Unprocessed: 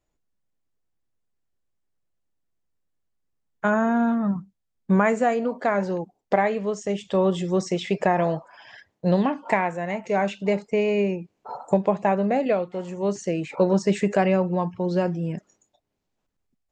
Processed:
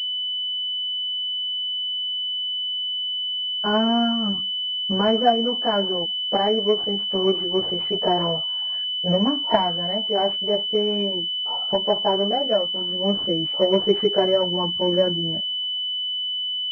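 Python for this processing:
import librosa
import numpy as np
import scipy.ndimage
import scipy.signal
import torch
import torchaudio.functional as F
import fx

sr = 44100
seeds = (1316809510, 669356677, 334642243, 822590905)

y = fx.chorus_voices(x, sr, voices=6, hz=0.14, base_ms=16, depth_ms=2.5, mix_pct=65)
y = fx.pwm(y, sr, carrier_hz=3000.0)
y = y * 10.0 ** (3.0 / 20.0)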